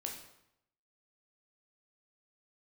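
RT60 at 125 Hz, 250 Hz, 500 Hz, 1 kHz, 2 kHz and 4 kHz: 0.90 s, 0.80 s, 0.80 s, 0.80 s, 0.75 s, 0.65 s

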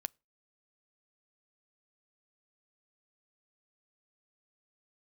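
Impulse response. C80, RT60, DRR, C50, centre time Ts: 39.5 dB, 0.30 s, 17.0 dB, 34.0 dB, 1 ms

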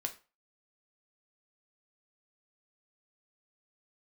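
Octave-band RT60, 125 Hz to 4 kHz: 0.30 s, 0.30 s, 0.30 s, 0.35 s, 0.30 s, 0.25 s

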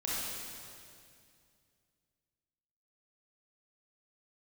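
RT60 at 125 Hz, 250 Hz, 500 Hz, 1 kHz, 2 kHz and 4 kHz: 2.9 s, 2.7 s, 2.4 s, 2.2 s, 2.2 s, 2.2 s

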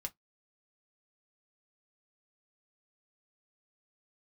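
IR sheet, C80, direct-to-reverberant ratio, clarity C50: 45.0 dB, 4.0 dB, 28.5 dB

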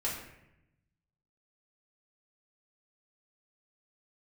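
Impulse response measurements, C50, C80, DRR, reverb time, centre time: 4.0 dB, 6.5 dB, -7.0 dB, 0.85 s, 44 ms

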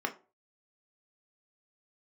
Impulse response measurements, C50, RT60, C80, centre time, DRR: 15.5 dB, 0.35 s, 21.5 dB, 9 ms, 4.0 dB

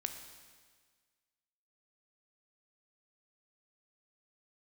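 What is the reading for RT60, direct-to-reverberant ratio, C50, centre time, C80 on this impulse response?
1.6 s, 6.0 dB, 7.5 dB, 28 ms, 8.5 dB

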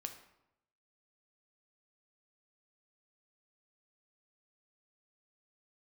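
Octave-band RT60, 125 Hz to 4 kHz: 1.0 s, 0.90 s, 0.85 s, 0.85 s, 0.70 s, 0.55 s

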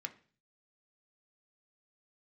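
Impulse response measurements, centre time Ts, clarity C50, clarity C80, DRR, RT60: 5 ms, 16.5 dB, 21.0 dB, 5.5 dB, 0.40 s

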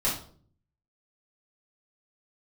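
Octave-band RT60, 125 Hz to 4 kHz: 0.90 s, 0.75 s, 0.60 s, 0.45 s, 0.35 s, 0.40 s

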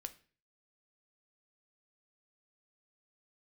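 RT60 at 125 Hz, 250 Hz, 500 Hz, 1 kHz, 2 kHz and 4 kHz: 0.60 s, 0.50 s, 0.45 s, 0.40 s, 0.45 s, 0.40 s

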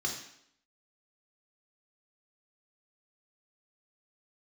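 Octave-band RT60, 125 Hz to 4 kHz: 0.60 s, 0.75 s, 0.70 s, 0.70 s, 0.70 s, 0.70 s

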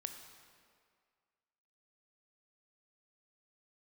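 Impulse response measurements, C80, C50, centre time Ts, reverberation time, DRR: 8.0 dB, 7.0 dB, 35 ms, 2.0 s, 5.5 dB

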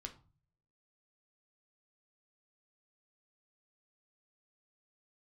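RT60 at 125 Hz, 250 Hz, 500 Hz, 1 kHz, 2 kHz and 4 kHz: 0.80 s, 0.55 s, 0.35 s, 0.40 s, 0.25 s, 0.25 s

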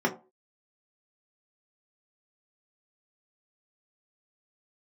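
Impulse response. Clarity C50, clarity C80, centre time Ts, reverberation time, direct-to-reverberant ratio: 13.5 dB, 19.0 dB, 11 ms, no single decay rate, -1.0 dB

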